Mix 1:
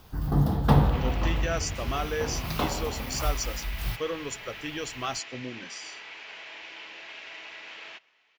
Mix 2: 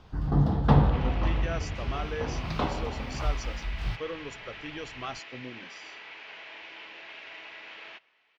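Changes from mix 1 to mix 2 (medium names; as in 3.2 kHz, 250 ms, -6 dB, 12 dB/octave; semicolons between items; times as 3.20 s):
speech -4.0 dB; master: add distance through air 140 m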